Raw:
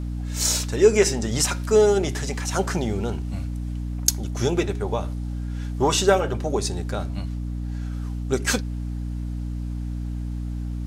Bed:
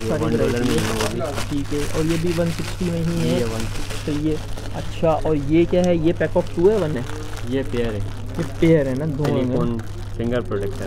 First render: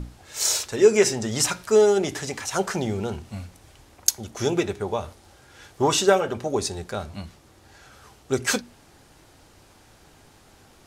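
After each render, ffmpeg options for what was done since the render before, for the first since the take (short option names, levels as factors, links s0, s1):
-af "bandreject=f=60:t=h:w=6,bandreject=f=120:t=h:w=6,bandreject=f=180:t=h:w=6,bandreject=f=240:t=h:w=6,bandreject=f=300:t=h:w=6"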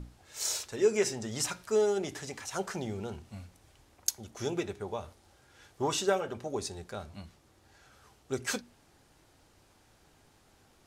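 -af "volume=0.316"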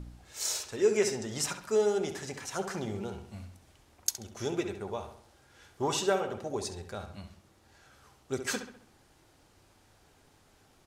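-filter_complex "[0:a]asplit=2[s0][s1];[s1]adelay=67,lowpass=f=3900:p=1,volume=0.376,asplit=2[s2][s3];[s3]adelay=67,lowpass=f=3900:p=1,volume=0.47,asplit=2[s4][s5];[s5]adelay=67,lowpass=f=3900:p=1,volume=0.47,asplit=2[s6][s7];[s7]adelay=67,lowpass=f=3900:p=1,volume=0.47,asplit=2[s8][s9];[s9]adelay=67,lowpass=f=3900:p=1,volume=0.47[s10];[s0][s2][s4][s6][s8][s10]amix=inputs=6:normalize=0"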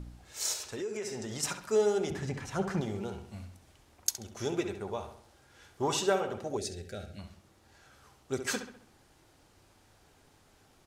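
-filter_complex "[0:a]asettb=1/sr,asplit=3[s0][s1][s2];[s0]atrim=end=0.534[s3];[s1]atrim=start=0.53:end=1.43,asetpts=PTS-STARTPTS,afade=t=in:d=0.004:c=qsin,afade=t=out:st=0.896:d=0.004:c=qsin,acompressor=threshold=0.02:ratio=5:attack=3.2:release=140:knee=1:detection=peak[s4];[s2]atrim=start=1.426[s5];[s3][s4]acrossfade=d=0.004:c1=hsin:c2=qsin[s6];[s6][s5]acrossfade=d=0.004:c1=qsin:c2=hsin,asettb=1/sr,asplit=3[s7][s8][s9];[s7]atrim=end=2.104[s10];[s8]atrim=start=2.1:end=2.81,asetpts=PTS-STARTPTS,afade=t=in:d=0.004:c=qsin,afade=t=out:st=0.706:d=0.004:c=qsin,bass=f=250:g=11,treble=f=4000:g=-8[s11];[s9]atrim=start=2.806[s12];[s10][s11]acrossfade=d=0.004:c1=hsin:c2=qsin[s13];[s13][s12]acrossfade=d=0.004:c1=qsin:c2=hsin,asettb=1/sr,asplit=3[s14][s15][s16];[s14]atrim=end=6.574[s17];[s15]atrim=start=6.57:end=7.19,asetpts=PTS-STARTPTS,afade=t=in:d=0.004:c=qsin,afade=t=out:st=0.616:d=0.004:c=qsin,asuperstop=centerf=1000:order=4:qfactor=1.2[s18];[s16]atrim=start=7.186[s19];[s17][s18]acrossfade=d=0.004:c1=hsin:c2=qsin[s20];[s20][s19]acrossfade=d=0.004:c1=qsin:c2=hsin"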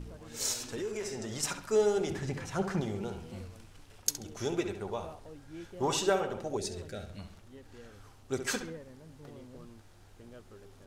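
-filter_complex "[1:a]volume=0.0335[s0];[0:a][s0]amix=inputs=2:normalize=0"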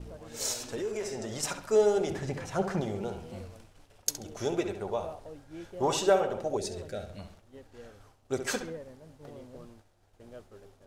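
-af "equalizer=f=610:w=1.6:g=7,agate=range=0.0224:threshold=0.00447:ratio=3:detection=peak"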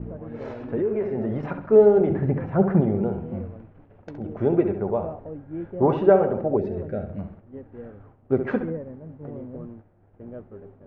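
-af "lowpass=f=2100:w=0.5412,lowpass=f=2100:w=1.3066,equalizer=f=190:w=0.38:g=14"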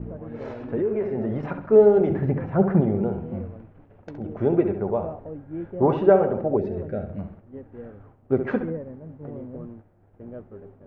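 -filter_complex "[0:a]asettb=1/sr,asplit=3[s0][s1][s2];[s0]atrim=end=1.934[s3];[s1]atrim=start=1.93:end=2.34,asetpts=PTS-STARTPTS,afade=t=in:d=0.004:c=qsin,afade=t=out:st=0.406:d=0.004:c=qsin,aemphasis=mode=production:type=50fm[s4];[s2]atrim=start=2.336[s5];[s3][s4]acrossfade=d=0.004:c1=hsin:c2=qsin[s6];[s6][s5]acrossfade=d=0.004:c1=qsin:c2=hsin"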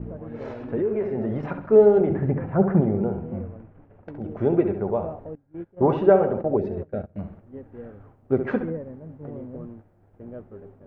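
-filter_complex "[0:a]asettb=1/sr,asplit=3[s0][s1][s2];[s0]atrim=end=2.014[s3];[s1]atrim=start=2.01:end=4.19,asetpts=PTS-STARTPTS,afade=t=in:d=0.004:c=qsin,afade=t=out:st=2.176:d=0.004:c=qsin,lowpass=2500[s4];[s2]atrim=start=4.186[s5];[s3][s4]acrossfade=d=0.004:c1=hsin:c2=qsin[s6];[s6][s5]acrossfade=d=0.004:c1=qsin:c2=hsin,asettb=1/sr,asplit=3[s7][s8][s9];[s7]atrim=end=5.354[s10];[s8]atrim=start=5.35:end=7.16,asetpts=PTS-STARTPTS,afade=t=in:d=0.004:c=qsin,afade=t=out:st=1.806:d=0.004:c=qsin,agate=range=0.0891:threshold=0.0282:ratio=16:release=100:detection=peak[s11];[s9]atrim=start=7.156[s12];[s10][s11]acrossfade=d=0.004:c1=hsin:c2=qsin[s13];[s13][s12]acrossfade=d=0.004:c1=qsin:c2=hsin"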